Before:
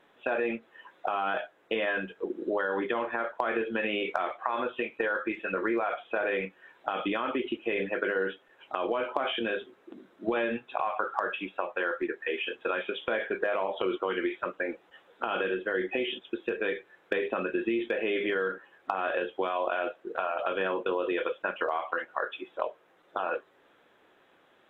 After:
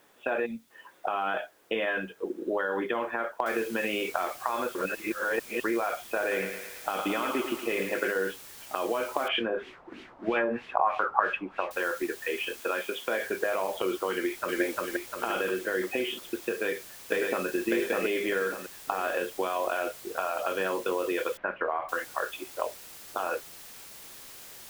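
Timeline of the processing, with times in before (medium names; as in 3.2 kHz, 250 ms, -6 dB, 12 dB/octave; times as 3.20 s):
0.46–0.70 s: time-frequency box 300–3400 Hz -19 dB
3.46 s: noise floor step -67 dB -47 dB
4.75–5.64 s: reverse
6.20–8.12 s: thinning echo 111 ms, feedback 62%, high-pass 370 Hz, level -6 dB
9.28–11.71 s: LFO low-pass sine 3.1 Hz 850–2900 Hz
12.60–13.20 s: high-pass 190 Hz
14.13–14.61 s: echo throw 350 ms, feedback 50%, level 0 dB
16.50–17.46 s: echo throw 600 ms, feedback 40%, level -2 dB
21.37–21.89 s: low-pass 2.2 kHz 24 dB/octave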